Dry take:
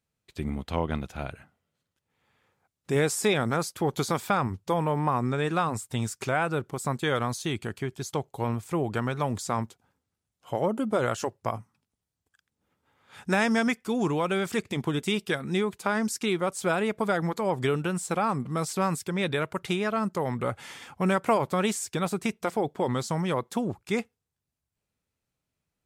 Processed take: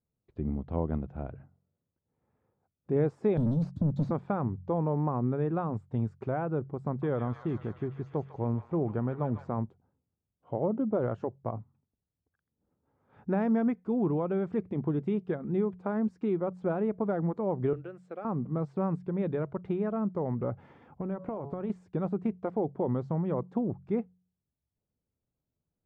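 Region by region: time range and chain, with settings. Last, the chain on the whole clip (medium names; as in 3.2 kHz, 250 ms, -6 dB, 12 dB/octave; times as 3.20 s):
3.37–4.11 s: Chebyshev band-stop 280–3700 Hz, order 5 + waveshaping leveller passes 3 + three bands compressed up and down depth 100%
6.84–9.49 s: low-pass 8.2 kHz + feedback echo behind a high-pass 150 ms, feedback 70%, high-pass 1.5 kHz, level -4 dB
17.73–18.25 s: high-pass 560 Hz + peaking EQ 920 Hz -15 dB 0.63 oct
20.97–21.70 s: de-hum 140.2 Hz, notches 9 + compression 5:1, threshold -28 dBFS
whole clip: Bessel low-pass 520 Hz, order 2; de-hum 45.39 Hz, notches 4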